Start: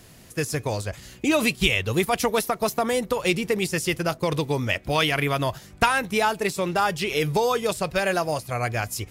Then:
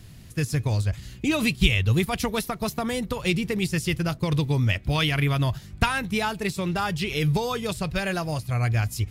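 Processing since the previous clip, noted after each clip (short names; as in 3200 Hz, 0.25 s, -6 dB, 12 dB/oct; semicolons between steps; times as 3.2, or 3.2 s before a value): EQ curve 110 Hz 0 dB, 530 Hz -16 dB, 4000 Hz -9 dB, 6100 Hz -13 dB; gain +8.5 dB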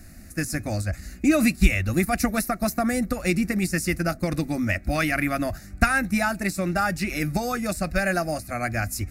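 fixed phaser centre 650 Hz, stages 8; gain +6 dB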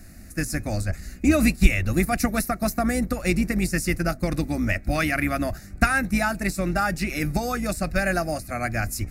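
octaver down 2 oct, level -5 dB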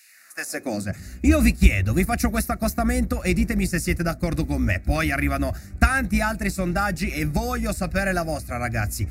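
high-pass sweep 2600 Hz -> 63 Hz, 0.06–1.15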